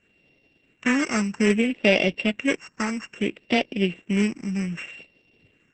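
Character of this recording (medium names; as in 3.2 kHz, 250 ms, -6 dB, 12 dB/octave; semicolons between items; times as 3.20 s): a buzz of ramps at a fixed pitch in blocks of 16 samples; phasing stages 4, 0.62 Hz, lowest notch 570–1200 Hz; Opus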